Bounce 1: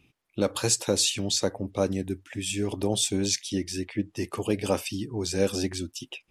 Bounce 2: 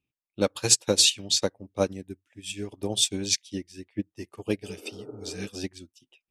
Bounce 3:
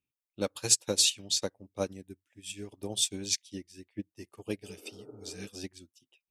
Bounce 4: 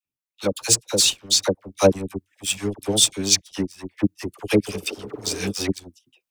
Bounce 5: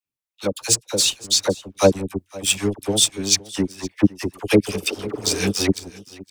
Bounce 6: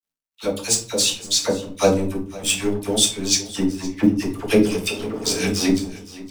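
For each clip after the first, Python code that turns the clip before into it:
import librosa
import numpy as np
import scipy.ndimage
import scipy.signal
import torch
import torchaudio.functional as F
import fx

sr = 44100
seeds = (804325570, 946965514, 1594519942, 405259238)

y1 = fx.dynamic_eq(x, sr, hz=3100.0, q=0.86, threshold_db=-39.0, ratio=4.0, max_db=5)
y1 = fx.spec_repair(y1, sr, seeds[0], start_s=4.69, length_s=0.76, low_hz=230.0, high_hz=1500.0, source='before')
y1 = fx.upward_expand(y1, sr, threshold_db=-37.0, expansion=2.5)
y1 = y1 * librosa.db_to_amplitude(5.0)
y2 = fx.high_shelf(y1, sr, hz=6900.0, db=7.0)
y2 = y2 * librosa.db_to_amplitude(-7.5)
y3 = fx.leveller(y2, sr, passes=2)
y3 = fx.rider(y3, sr, range_db=5, speed_s=0.5)
y3 = fx.dispersion(y3, sr, late='lows', ms=56.0, hz=900.0)
y3 = y3 * librosa.db_to_amplitude(5.0)
y4 = fx.rider(y3, sr, range_db=3, speed_s=0.5)
y4 = y4 + 10.0 ** (-20.5 / 20.0) * np.pad(y4, (int(514 * sr / 1000.0), 0))[:len(y4)]
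y4 = y4 * librosa.db_to_amplitude(2.0)
y5 = fx.law_mismatch(y4, sr, coded='mu')
y5 = fx.room_shoebox(y5, sr, seeds[1], volume_m3=270.0, walls='furnished', distance_m=1.6)
y5 = y5 * librosa.db_to_amplitude(-3.0)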